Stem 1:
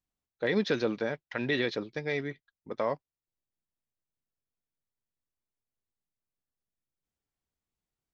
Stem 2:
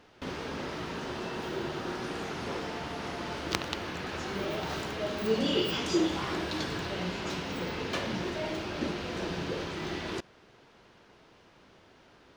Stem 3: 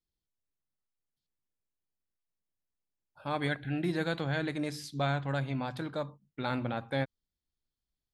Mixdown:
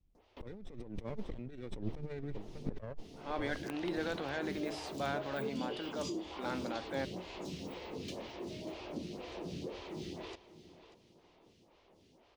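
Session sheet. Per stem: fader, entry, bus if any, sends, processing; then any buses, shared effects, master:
-3.0 dB, 0.00 s, no send, echo send -23.5 dB, minimum comb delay 0.33 ms; tilt -4 dB/oct
-10.0 dB, 0.15 s, no send, echo send -14.5 dB, bell 1500 Hz -13.5 dB 0.75 oct; compressor 3:1, threshold -35 dBFS, peak gain reduction 9.5 dB; photocell phaser 2 Hz; auto duck -11 dB, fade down 1.30 s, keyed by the first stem
-10.5 dB, 0.00 s, no send, no echo send, Chebyshev band-pass 320–8700 Hz, order 2; high shelf 5100 Hz -10.5 dB; transient shaper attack -3 dB, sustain +5 dB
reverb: off
echo: feedback echo 0.589 s, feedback 24%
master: negative-ratio compressor -39 dBFS, ratio -1

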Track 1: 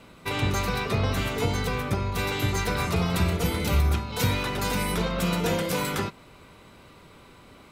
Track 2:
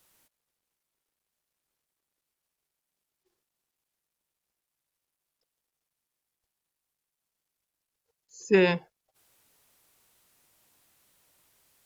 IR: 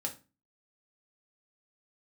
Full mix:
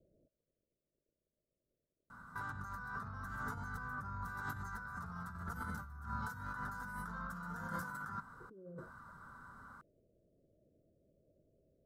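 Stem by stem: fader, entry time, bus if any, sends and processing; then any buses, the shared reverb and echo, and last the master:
-14.0 dB, 2.10 s, no send, EQ curve 240 Hz 0 dB, 340 Hz -15 dB, 630 Hz -10 dB, 900 Hz +3 dB, 1500 Hz +14 dB, 2400 Hz -26 dB, 5500 Hz -8 dB, 8800 Hz -6 dB
-0.5 dB, 0.00 s, no send, Chebyshev low-pass 650 Hz, order 8; compressor 12:1, threshold -25 dBFS, peak gain reduction 9.5 dB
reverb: off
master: negative-ratio compressor -45 dBFS, ratio -1

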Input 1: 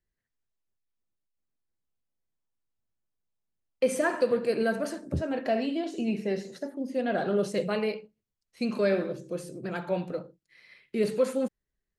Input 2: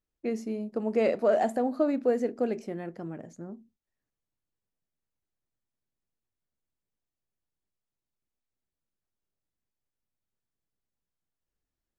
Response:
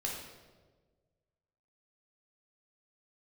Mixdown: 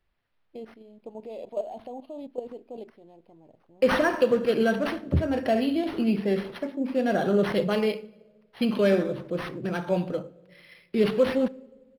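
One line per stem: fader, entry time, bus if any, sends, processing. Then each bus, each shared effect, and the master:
+2.5 dB, 0.00 s, send -20 dB, tone controls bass +6 dB, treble +12 dB
-1.0 dB, 0.30 s, no send, EQ curve 120 Hz 0 dB, 180 Hz -8 dB, 960 Hz 0 dB, 1500 Hz -30 dB, 3400 Hz +6 dB; level quantiser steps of 12 dB; auto duck -6 dB, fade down 1.05 s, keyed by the first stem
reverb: on, RT60 1.4 s, pre-delay 3 ms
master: bell 150 Hz -2.5 dB 1.1 oct; decimation joined by straight lines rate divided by 6×

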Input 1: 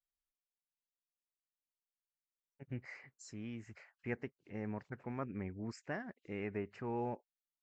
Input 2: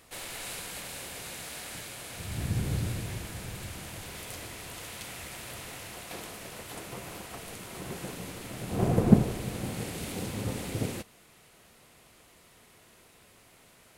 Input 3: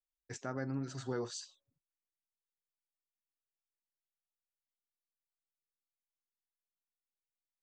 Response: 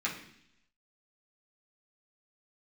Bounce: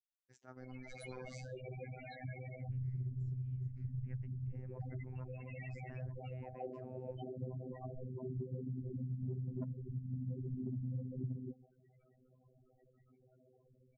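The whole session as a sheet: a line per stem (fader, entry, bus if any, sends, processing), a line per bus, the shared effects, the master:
-15.5 dB, 0.00 s, no send, dry
-1.5 dB, 0.50 s, no send, AGC gain up to 11.5 dB; loudest bins only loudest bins 4; soft clip -13 dBFS, distortion -14 dB
-12.5 dB, 0.00 s, no send, dry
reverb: off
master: gate -51 dBFS, range -7 dB; robotiser 128 Hz; compressor 16:1, threshold -37 dBFS, peak gain reduction 18 dB

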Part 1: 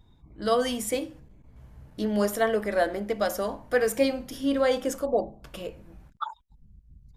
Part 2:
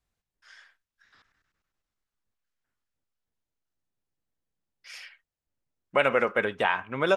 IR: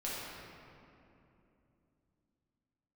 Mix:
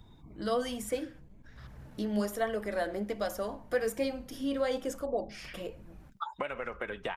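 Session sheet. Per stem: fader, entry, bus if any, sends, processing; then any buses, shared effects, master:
-3.0 dB, 0.00 s, no send, low shelf 210 Hz +3.5 dB
-0.5 dB, 0.45 s, no send, compressor 10:1, threshold -29 dBFS, peak gain reduction 12.5 dB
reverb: off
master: flange 1.2 Hz, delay 0.6 ms, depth 5.5 ms, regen +64%; three-band squash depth 40%

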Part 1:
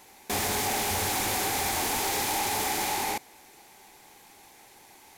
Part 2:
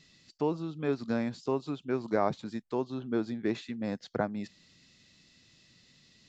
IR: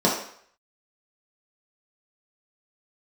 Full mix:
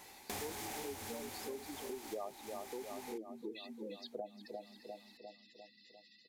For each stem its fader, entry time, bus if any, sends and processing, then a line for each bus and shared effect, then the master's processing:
-2.5 dB, 0.00 s, no send, no echo send, auto duck -16 dB, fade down 1.55 s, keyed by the second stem
+1.5 dB, 0.00 s, no send, echo send -9.5 dB, spectral gate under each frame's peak -10 dB strong; HPF 540 Hz 12 dB/oct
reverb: off
echo: feedback echo 0.35 s, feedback 57%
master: compressor 4:1, threshold -42 dBFS, peak gain reduction 14.5 dB

